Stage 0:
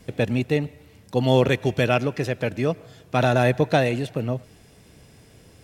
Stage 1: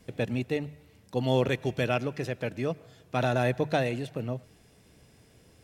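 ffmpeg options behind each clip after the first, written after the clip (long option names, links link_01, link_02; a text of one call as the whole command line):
ffmpeg -i in.wav -af "bandreject=frequency=50:width_type=h:width=6,bandreject=frequency=100:width_type=h:width=6,bandreject=frequency=150:width_type=h:width=6,volume=-7dB" out.wav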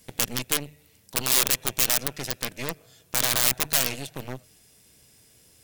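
ffmpeg -i in.wav -af "aeval=exprs='(mod(8.91*val(0)+1,2)-1)/8.91':channel_layout=same,aeval=exprs='0.119*(cos(1*acos(clip(val(0)/0.119,-1,1)))-cos(1*PI/2))+0.0422*(cos(6*acos(clip(val(0)/0.119,-1,1)))-cos(6*PI/2))+0.0106*(cos(8*acos(clip(val(0)/0.119,-1,1)))-cos(8*PI/2))':channel_layout=same,crystalizer=i=5:c=0,volume=-5.5dB" out.wav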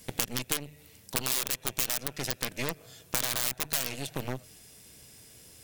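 ffmpeg -i in.wav -af "acompressor=threshold=-32dB:ratio=3,volume=4dB" out.wav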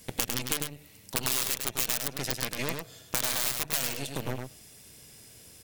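ffmpeg -i in.wav -af "aecho=1:1:102:0.562" out.wav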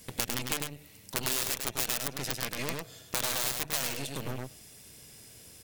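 ffmpeg -i in.wav -af "aeval=exprs='clip(val(0),-1,0.0447)':channel_layout=same" out.wav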